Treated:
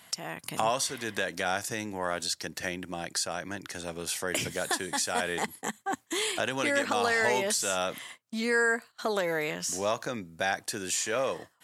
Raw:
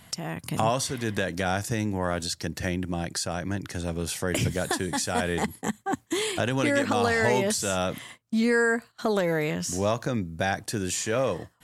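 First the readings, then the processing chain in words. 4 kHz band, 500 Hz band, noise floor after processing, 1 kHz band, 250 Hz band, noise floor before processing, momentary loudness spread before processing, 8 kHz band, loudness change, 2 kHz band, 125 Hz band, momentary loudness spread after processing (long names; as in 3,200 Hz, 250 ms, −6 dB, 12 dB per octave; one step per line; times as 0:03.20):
0.0 dB, −4.0 dB, −63 dBFS, −2.0 dB, −9.0 dB, −60 dBFS, 8 LU, 0.0 dB, −3.0 dB, −0.5 dB, −13.5 dB, 10 LU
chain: high-pass filter 630 Hz 6 dB per octave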